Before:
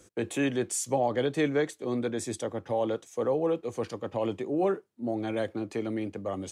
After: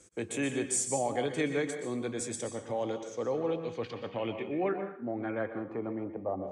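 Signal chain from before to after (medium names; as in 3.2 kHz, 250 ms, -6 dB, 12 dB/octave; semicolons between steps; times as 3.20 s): peaking EQ 2.2 kHz +5 dB 0.33 oct; plate-style reverb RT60 0.56 s, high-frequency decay 0.95×, pre-delay 110 ms, DRR 6.5 dB; low-pass sweep 8.5 kHz -> 720 Hz, 2.54–6.49 s; trim -5 dB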